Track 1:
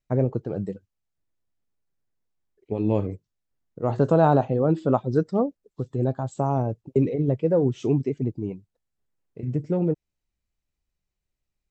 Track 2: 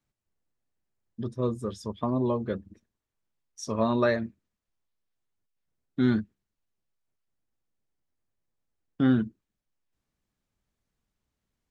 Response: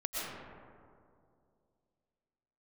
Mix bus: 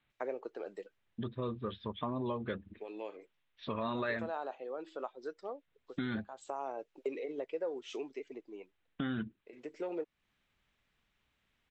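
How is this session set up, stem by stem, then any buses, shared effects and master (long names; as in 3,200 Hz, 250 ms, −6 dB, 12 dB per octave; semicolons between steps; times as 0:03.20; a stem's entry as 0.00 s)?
−4.0 dB, 0.10 s, no send, high-pass filter 360 Hz 24 dB per octave; automatic ducking −11 dB, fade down 2.00 s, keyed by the second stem
+0.5 dB, 0.00 s, no send, Butterworth low-pass 3,900 Hz 72 dB per octave; brickwall limiter −19.5 dBFS, peak gain reduction 8 dB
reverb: not used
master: parametric band 2,500 Hz +12 dB 2.6 octaves; downward compressor 2 to 1, threshold −41 dBFS, peak gain reduction 12 dB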